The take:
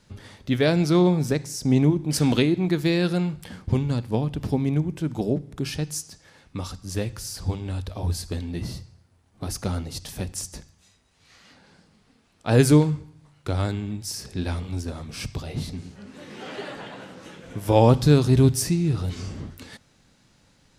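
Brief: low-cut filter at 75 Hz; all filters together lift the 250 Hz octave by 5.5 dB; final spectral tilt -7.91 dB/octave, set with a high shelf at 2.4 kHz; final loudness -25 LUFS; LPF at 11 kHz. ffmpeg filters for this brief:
-af "highpass=75,lowpass=11000,equalizer=f=250:t=o:g=7.5,highshelf=f=2400:g=-8,volume=0.562"

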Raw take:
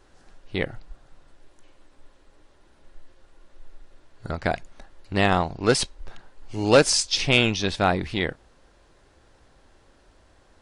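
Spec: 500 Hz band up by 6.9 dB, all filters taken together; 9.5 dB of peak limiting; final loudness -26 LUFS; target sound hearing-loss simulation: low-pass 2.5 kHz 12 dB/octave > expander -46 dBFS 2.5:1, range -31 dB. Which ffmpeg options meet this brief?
-af "equalizer=f=500:t=o:g=8,alimiter=limit=0.355:level=0:latency=1,lowpass=2500,agate=range=0.0282:threshold=0.00501:ratio=2.5,volume=0.794"

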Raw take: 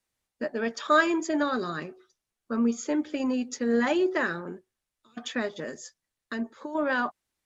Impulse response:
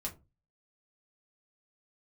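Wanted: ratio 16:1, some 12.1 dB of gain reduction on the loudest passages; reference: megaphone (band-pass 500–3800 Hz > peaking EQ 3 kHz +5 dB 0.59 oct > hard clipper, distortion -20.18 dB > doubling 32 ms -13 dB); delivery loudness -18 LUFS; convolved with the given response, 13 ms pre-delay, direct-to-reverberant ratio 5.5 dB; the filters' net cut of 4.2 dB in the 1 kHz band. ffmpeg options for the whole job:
-filter_complex "[0:a]equalizer=f=1000:t=o:g=-5.5,acompressor=threshold=0.0251:ratio=16,asplit=2[s0][s1];[1:a]atrim=start_sample=2205,adelay=13[s2];[s1][s2]afir=irnorm=-1:irlink=0,volume=0.531[s3];[s0][s3]amix=inputs=2:normalize=0,highpass=500,lowpass=3800,equalizer=f=3000:t=o:w=0.59:g=5,asoftclip=type=hard:threshold=0.0316,asplit=2[s4][s5];[s5]adelay=32,volume=0.224[s6];[s4][s6]amix=inputs=2:normalize=0,volume=12.6"

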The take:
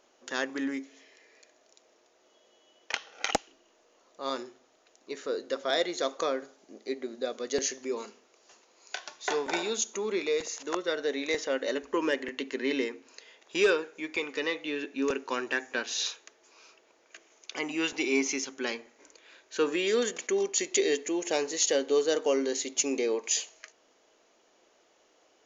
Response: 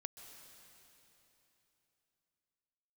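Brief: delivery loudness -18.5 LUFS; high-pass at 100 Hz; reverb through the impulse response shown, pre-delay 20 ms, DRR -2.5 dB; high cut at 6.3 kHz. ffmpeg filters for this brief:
-filter_complex "[0:a]highpass=100,lowpass=6300,asplit=2[s0][s1];[1:a]atrim=start_sample=2205,adelay=20[s2];[s1][s2]afir=irnorm=-1:irlink=0,volume=2.11[s3];[s0][s3]amix=inputs=2:normalize=0,volume=2.66"

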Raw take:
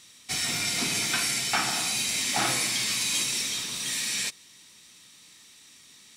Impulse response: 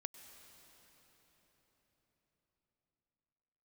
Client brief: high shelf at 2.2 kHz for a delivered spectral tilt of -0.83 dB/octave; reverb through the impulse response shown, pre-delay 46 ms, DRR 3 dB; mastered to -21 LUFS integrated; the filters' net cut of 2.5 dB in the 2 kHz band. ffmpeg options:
-filter_complex "[0:a]equalizer=f=2000:t=o:g=-6.5,highshelf=f=2200:g=5.5,asplit=2[s0][s1];[1:a]atrim=start_sample=2205,adelay=46[s2];[s1][s2]afir=irnorm=-1:irlink=0,volume=1.06[s3];[s0][s3]amix=inputs=2:normalize=0,volume=0.944"

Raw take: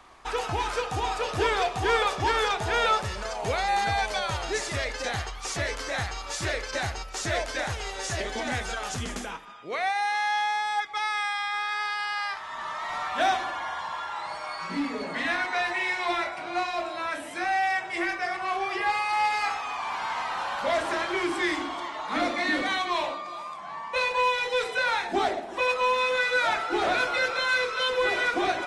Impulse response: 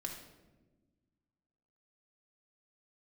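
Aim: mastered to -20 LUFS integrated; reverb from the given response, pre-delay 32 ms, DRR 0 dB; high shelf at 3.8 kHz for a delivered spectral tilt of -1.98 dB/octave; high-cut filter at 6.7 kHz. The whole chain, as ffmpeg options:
-filter_complex "[0:a]lowpass=6700,highshelf=f=3800:g=-4.5,asplit=2[s0][s1];[1:a]atrim=start_sample=2205,adelay=32[s2];[s1][s2]afir=irnorm=-1:irlink=0,volume=1.12[s3];[s0][s3]amix=inputs=2:normalize=0,volume=1.78"

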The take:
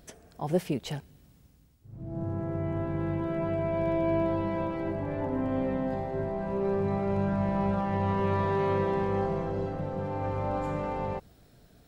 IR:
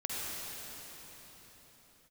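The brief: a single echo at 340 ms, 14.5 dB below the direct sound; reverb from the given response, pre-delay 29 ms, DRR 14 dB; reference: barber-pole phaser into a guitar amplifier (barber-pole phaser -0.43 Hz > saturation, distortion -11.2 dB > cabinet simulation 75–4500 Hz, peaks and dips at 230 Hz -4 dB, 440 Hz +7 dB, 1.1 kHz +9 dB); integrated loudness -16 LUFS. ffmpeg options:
-filter_complex "[0:a]aecho=1:1:340:0.188,asplit=2[s0][s1];[1:a]atrim=start_sample=2205,adelay=29[s2];[s1][s2]afir=irnorm=-1:irlink=0,volume=0.112[s3];[s0][s3]amix=inputs=2:normalize=0,asplit=2[s4][s5];[s5]afreqshift=-0.43[s6];[s4][s6]amix=inputs=2:normalize=1,asoftclip=threshold=0.0299,highpass=75,equalizer=f=230:t=q:w=4:g=-4,equalizer=f=440:t=q:w=4:g=7,equalizer=f=1100:t=q:w=4:g=9,lowpass=f=4500:w=0.5412,lowpass=f=4500:w=1.3066,volume=8.91"

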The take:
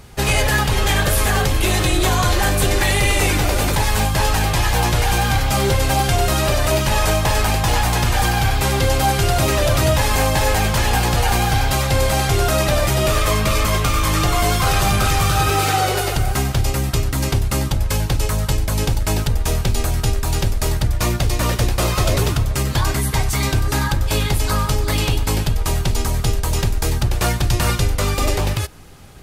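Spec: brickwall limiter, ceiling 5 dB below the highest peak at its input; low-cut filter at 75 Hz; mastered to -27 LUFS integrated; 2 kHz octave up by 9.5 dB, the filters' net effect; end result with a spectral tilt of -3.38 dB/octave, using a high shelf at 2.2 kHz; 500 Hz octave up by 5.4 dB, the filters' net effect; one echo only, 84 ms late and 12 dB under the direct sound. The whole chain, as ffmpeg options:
-af "highpass=75,equalizer=f=500:t=o:g=6,equalizer=f=2000:t=o:g=8,highshelf=f=2200:g=6.5,alimiter=limit=0.631:level=0:latency=1,aecho=1:1:84:0.251,volume=0.237"

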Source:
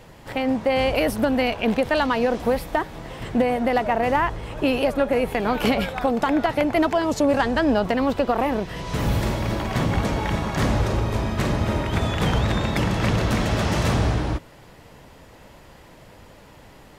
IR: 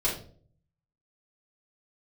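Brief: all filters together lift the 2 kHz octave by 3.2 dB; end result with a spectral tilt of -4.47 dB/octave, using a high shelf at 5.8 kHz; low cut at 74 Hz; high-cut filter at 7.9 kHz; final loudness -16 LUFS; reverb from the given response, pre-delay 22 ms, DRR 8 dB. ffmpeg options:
-filter_complex "[0:a]highpass=74,lowpass=7900,equalizer=f=2000:t=o:g=3.5,highshelf=f=5800:g=3.5,asplit=2[s0][s1];[1:a]atrim=start_sample=2205,adelay=22[s2];[s1][s2]afir=irnorm=-1:irlink=0,volume=0.141[s3];[s0][s3]amix=inputs=2:normalize=0,volume=1.88"

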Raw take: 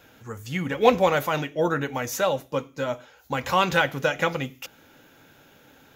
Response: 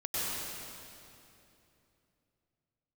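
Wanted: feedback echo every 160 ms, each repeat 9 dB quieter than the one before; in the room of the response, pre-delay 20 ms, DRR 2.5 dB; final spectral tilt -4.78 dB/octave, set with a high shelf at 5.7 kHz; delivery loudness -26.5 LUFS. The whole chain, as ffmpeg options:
-filter_complex "[0:a]highshelf=f=5700:g=6,aecho=1:1:160|320|480|640:0.355|0.124|0.0435|0.0152,asplit=2[s0][s1];[1:a]atrim=start_sample=2205,adelay=20[s2];[s1][s2]afir=irnorm=-1:irlink=0,volume=0.335[s3];[s0][s3]amix=inputs=2:normalize=0,volume=0.596"

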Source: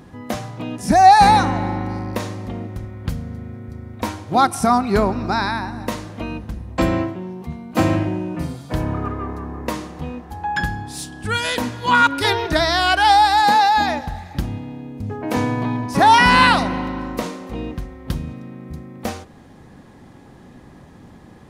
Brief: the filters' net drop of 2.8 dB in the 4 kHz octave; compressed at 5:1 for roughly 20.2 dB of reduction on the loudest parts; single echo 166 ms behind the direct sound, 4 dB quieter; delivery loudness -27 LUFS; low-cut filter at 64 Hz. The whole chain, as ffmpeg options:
-af "highpass=64,equalizer=f=4000:t=o:g=-3.5,acompressor=threshold=0.0316:ratio=5,aecho=1:1:166:0.631,volume=1.68"

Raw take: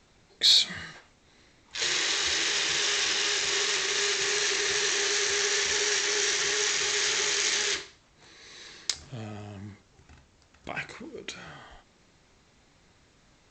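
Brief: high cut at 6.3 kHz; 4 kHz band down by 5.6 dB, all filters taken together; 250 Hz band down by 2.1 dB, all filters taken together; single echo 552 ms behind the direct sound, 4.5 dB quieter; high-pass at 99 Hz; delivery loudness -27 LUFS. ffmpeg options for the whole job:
-af "highpass=99,lowpass=6300,equalizer=f=250:t=o:g=-3.5,equalizer=f=4000:t=o:g=-6,aecho=1:1:552:0.596,volume=1.19"

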